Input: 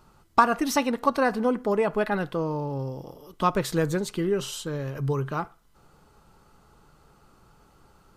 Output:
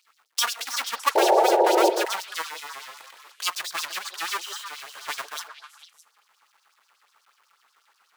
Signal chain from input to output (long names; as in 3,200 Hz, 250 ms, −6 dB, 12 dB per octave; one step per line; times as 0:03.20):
each half-wave held at its own peak
high-pass filter 91 Hz 6 dB per octave
in parallel at 0 dB: output level in coarse steps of 23 dB
on the sum: auto-filter high-pass sine 8.2 Hz 990–5,500 Hz
sound drawn into the spectrogram noise, 0:01.15–0:01.90, 330–950 Hz −11 dBFS
on a send: echo through a band-pass that steps 153 ms, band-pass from 480 Hz, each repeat 1.4 octaves, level −5 dB
on the sum: level −8 dB